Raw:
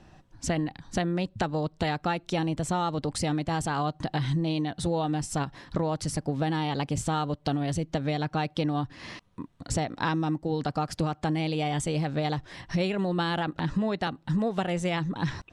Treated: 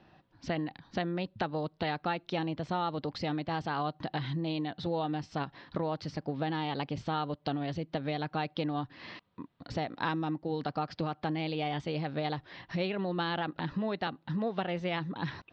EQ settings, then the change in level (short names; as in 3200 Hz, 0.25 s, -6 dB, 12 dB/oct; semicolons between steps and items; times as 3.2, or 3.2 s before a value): HPF 190 Hz 6 dB/oct; steep low-pass 4700 Hz 36 dB/oct; -3.5 dB